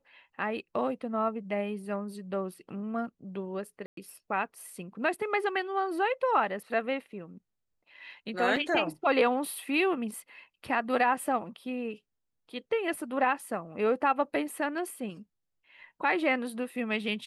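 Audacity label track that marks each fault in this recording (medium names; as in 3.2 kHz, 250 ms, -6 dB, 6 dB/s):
3.860000	3.970000	dropout 113 ms
8.560000	8.560000	dropout 4.2 ms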